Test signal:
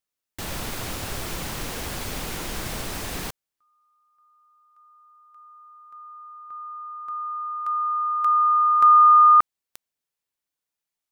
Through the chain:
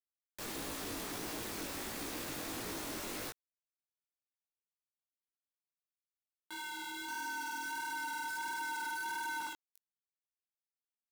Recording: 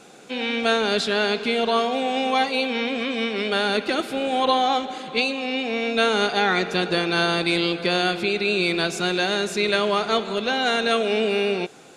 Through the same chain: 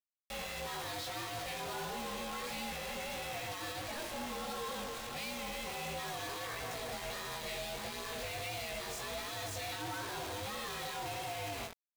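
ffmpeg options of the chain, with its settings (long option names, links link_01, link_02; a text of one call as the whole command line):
ffmpeg -i in.wav -filter_complex "[0:a]aeval=exprs='val(0)*sin(2*PI*300*n/s)':channel_layout=same,adynamicequalizer=threshold=0.0141:dfrequency=1200:dqfactor=3.4:tfrequency=1200:tqfactor=3.4:attack=5:release=100:ratio=0.375:range=1.5:mode=cutabove:tftype=bell,bandreject=frequency=50:width_type=h:width=6,bandreject=frequency=100:width_type=h:width=6,bandreject=frequency=150:width_type=h:width=6,bandreject=frequency=200:width_type=h:width=6,bandreject=frequency=250:width_type=h:width=6,bandreject=frequency=300:width_type=h:width=6,bandreject=frequency=350:width_type=h:width=6,acrossover=split=160|2200[link_01][link_02][link_03];[link_01]acompressor=threshold=-40dB:ratio=2.5:release=950:knee=2.83:detection=peak[link_04];[link_04][link_02][link_03]amix=inputs=3:normalize=0,equalizer=frequency=150:width=6.4:gain=-4.5,bandreject=frequency=3000:width=15,asplit=2[link_05][link_06];[link_06]adelay=62,lowpass=frequency=1900:poles=1,volume=-12.5dB,asplit=2[link_07][link_08];[link_08]adelay=62,lowpass=frequency=1900:poles=1,volume=0.38,asplit=2[link_09][link_10];[link_10]adelay=62,lowpass=frequency=1900:poles=1,volume=0.38,asplit=2[link_11][link_12];[link_12]adelay=62,lowpass=frequency=1900:poles=1,volume=0.38[link_13];[link_07][link_09][link_11][link_13]amix=inputs=4:normalize=0[link_14];[link_05][link_14]amix=inputs=2:normalize=0,acompressor=threshold=-28dB:ratio=6:attack=0.18:release=31:knee=6:detection=rms,acrusher=bits=5:mix=0:aa=0.000001,flanger=delay=17:depth=5.3:speed=1.5,asoftclip=type=tanh:threshold=-36dB" out.wav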